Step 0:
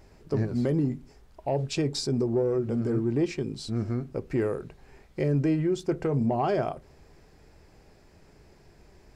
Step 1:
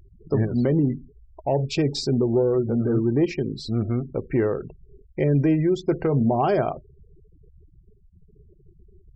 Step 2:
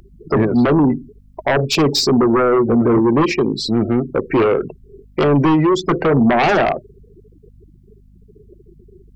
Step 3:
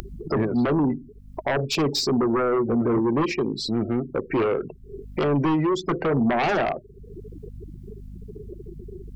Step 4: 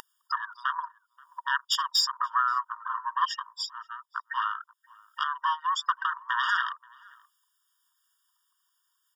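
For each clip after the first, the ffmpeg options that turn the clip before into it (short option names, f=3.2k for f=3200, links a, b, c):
-af "afftfilt=real='re*gte(hypot(re,im),0.00794)':imag='im*gte(hypot(re,im),0.00794)':win_size=1024:overlap=0.75,lowpass=5.5k,volume=5dB"
-filter_complex "[0:a]acrossover=split=200[a][b];[b]aeval=exprs='0.299*sin(PI/2*3.16*val(0)/0.299)':c=same[c];[a][c]amix=inputs=2:normalize=0,aeval=exprs='val(0)+0.00447*(sin(2*PI*50*n/s)+sin(2*PI*2*50*n/s)/2+sin(2*PI*3*50*n/s)/3+sin(2*PI*4*50*n/s)/4+sin(2*PI*5*50*n/s)/5)':c=same"
-af "acompressor=mode=upward:threshold=-16dB:ratio=2.5,volume=-8dB"
-filter_complex "[0:a]asplit=2[a][b];[b]adelay=530.6,volume=-25dB,highshelf=f=4k:g=-11.9[c];[a][c]amix=inputs=2:normalize=0,afftfilt=real='re*eq(mod(floor(b*sr/1024/940),2),1)':imag='im*eq(mod(floor(b*sr/1024/940),2),1)':win_size=1024:overlap=0.75,volume=4dB"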